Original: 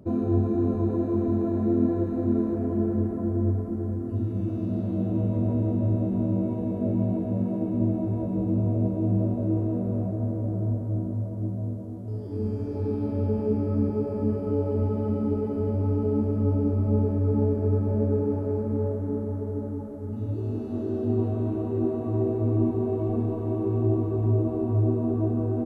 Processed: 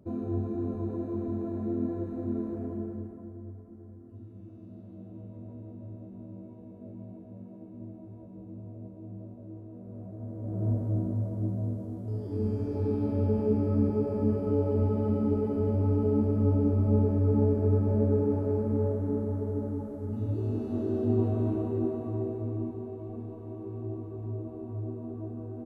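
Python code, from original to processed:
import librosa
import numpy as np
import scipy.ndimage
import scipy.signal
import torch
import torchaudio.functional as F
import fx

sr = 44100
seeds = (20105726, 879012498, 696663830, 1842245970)

y = fx.gain(x, sr, db=fx.line((2.65, -8.0), (3.43, -19.0), (9.7, -19.0), (10.38, -10.0), (10.68, -1.0), (21.51, -1.0), (22.95, -13.0)))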